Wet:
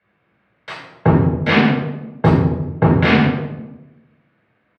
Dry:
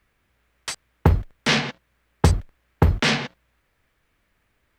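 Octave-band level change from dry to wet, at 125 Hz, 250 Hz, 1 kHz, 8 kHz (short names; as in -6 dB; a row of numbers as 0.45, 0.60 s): +6.0 dB, +12.0 dB, +7.5 dB, under -15 dB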